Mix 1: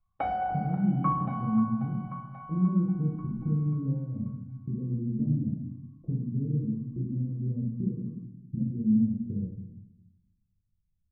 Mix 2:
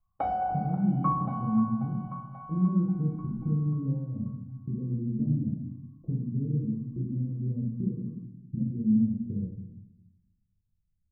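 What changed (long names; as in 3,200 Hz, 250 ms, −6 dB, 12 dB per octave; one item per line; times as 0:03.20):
background: remove high-frequency loss of the air 240 metres
master: add flat-topped bell 4,000 Hz −11.5 dB 2.9 octaves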